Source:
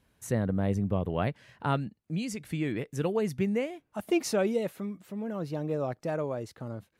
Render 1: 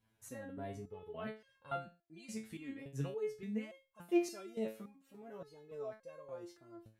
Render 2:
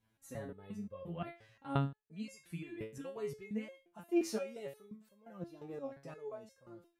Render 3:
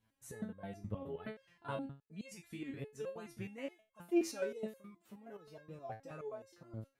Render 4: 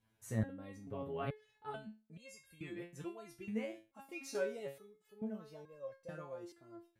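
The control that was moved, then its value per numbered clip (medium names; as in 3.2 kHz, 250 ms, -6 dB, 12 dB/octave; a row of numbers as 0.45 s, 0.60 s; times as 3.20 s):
resonator arpeggio, rate: 3.5 Hz, 5.7 Hz, 9.5 Hz, 2.3 Hz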